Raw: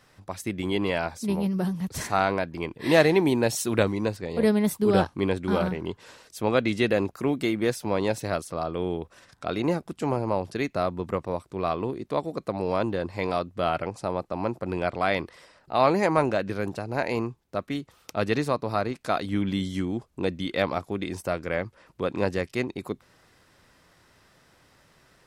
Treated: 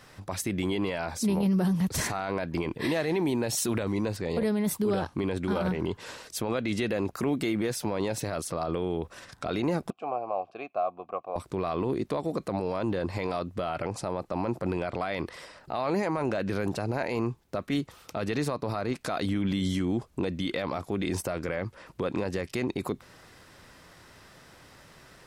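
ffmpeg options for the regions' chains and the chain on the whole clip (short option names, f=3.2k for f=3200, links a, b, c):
-filter_complex "[0:a]asettb=1/sr,asplit=3[a][b][c];[a]atrim=end=9.904[d];[b]atrim=start=9.9:end=11.36,asetpts=PTS-STARTPTS,afade=t=in:d=0.004:c=qsin,afade=t=out:st=1.456:d=0.004:c=qsin,asplit=3[e][f][g];[e]bandpass=f=730:t=q:w=8,volume=0dB[h];[f]bandpass=f=1.09k:t=q:w=8,volume=-6dB[i];[g]bandpass=f=2.44k:t=q:w=8,volume=-9dB[j];[h][i][j]amix=inputs=3:normalize=0,highshelf=f=5.4k:g=-10[k];[c]atrim=start=11.356[l];[d][k]acrossfade=d=0.004:c1=hsin:c2=qsin[m];[m][l]acrossfade=d=0.004:c1=qsin:c2=hsin,acompressor=threshold=-26dB:ratio=6,alimiter=level_in=2dB:limit=-24dB:level=0:latency=1:release=20,volume=-2dB,volume=6.5dB"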